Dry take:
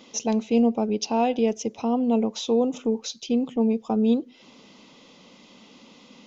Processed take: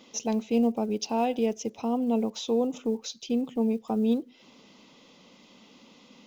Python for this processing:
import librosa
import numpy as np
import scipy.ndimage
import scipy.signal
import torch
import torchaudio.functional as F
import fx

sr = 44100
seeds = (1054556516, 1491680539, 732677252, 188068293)

y = fx.block_float(x, sr, bits=7)
y = y * librosa.db_to_amplitude(-4.0)